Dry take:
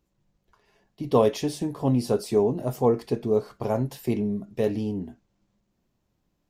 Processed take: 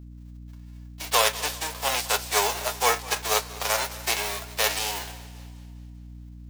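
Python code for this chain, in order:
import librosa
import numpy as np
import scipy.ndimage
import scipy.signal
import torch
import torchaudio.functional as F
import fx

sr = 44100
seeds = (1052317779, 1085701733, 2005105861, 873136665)

p1 = fx.envelope_flatten(x, sr, power=0.3)
p2 = scipy.signal.sosfilt(scipy.signal.butter(4, 540.0, 'highpass', fs=sr, output='sos'), p1)
p3 = fx.peak_eq(p2, sr, hz=11000.0, db=-5.5, octaves=0.76)
p4 = fx.rider(p3, sr, range_db=10, speed_s=2.0)
p5 = p3 + F.gain(torch.from_numpy(p4), 3.0).numpy()
p6 = fx.add_hum(p5, sr, base_hz=60, snr_db=14)
p7 = p6 + fx.echo_feedback(p6, sr, ms=251, feedback_pct=41, wet_db=-20.0, dry=0)
p8 = fx.echo_warbled(p7, sr, ms=197, feedback_pct=55, rate_hz=2.8, cents=90, wet_db=-20.0)
y = F.gain(torch.from_numpy(p8), -5.5).numpy()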